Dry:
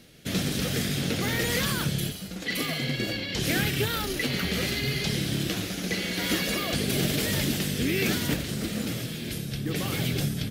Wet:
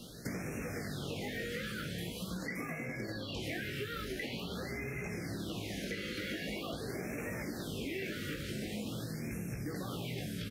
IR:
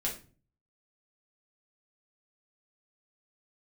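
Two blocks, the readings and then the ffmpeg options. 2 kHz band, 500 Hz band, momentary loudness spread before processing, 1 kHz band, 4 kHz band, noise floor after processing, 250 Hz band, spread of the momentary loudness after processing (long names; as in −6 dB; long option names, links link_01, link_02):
−10.5 dB, −9.0 dB, 6 LU, −10.5 dB, −15.0 dB, −43 dBFS, −11.0 dB, 2 LU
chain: -filter_complex "[0:a]flanger=delay=17:depth=2.5:speed=0.41,acrossover=split=350[link_01][link_02];[link_01]alimiter=level_in=7.5dB:limit=-24dB:level=0:latency=1:release=132,volume=-7.5dB[link_03];[link_03][link_02]amix=inputs=2:normalize=0,acrossover=split=2900[link_04][link_05];[link_05]acompressor=threshold=-45dB:ratio=4:attack=1:release=60[link_06];[link_04][link_06]amix=inputs=2:normalize=0,asplit=2[link_07][link_08];[link_08]aecho=0:1:598:0.178[link_09];[link_07][link_09]amix=inputs=2:normalize=0,acompressor=threshold=-44dB:ratio=8,afftfilt=real='re*(1-between(b*sr/1024,830*pow(3900/830,0.5+0.5*sin(2*PI*0.45*pts/sr))/1.41,830*pow(3900/830,0.5+0.5*sin(2*PI*0.45*pts/sr))*1.41))':imag='im*(1-between(b*sr/1024,830*pow(3900/830,0.5+0.5*sin(2*PI*0.45*pts/sr))/1.41,830*pow(3900/830,0.5+0.5*sin(2*PI*0.45*pts/sr))*1.41))':win_size=1024:overlap=0.75,volume=7.5dB"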